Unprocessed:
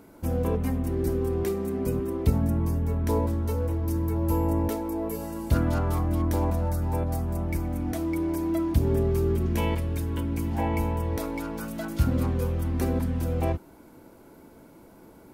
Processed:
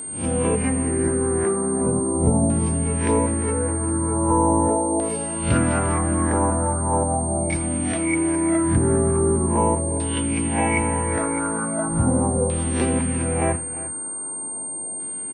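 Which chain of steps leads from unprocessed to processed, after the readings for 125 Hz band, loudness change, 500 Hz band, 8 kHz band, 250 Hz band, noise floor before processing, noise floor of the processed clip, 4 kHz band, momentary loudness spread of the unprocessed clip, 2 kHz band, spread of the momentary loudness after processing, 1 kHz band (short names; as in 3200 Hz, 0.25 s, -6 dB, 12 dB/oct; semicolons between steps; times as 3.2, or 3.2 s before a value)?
+2.0 dB, +6.0 dB, +7.0 dB, +23.0 dB, +6.5 dB, -51 dBFS, -31 dBFS, +5.5 dB, 5 LU, +11.0 dB, 6 LU, +10.0 dB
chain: spectral swells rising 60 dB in 0.42 s; HPF 110 Hz 12 dB/oct; LFO low-pass saw down 0.4 Hz 680–3800 Hz; whine 8700 Hz -35 dBFS; tapped delay 83/350 ms -18.5/-15.5 dB; gain +5 dB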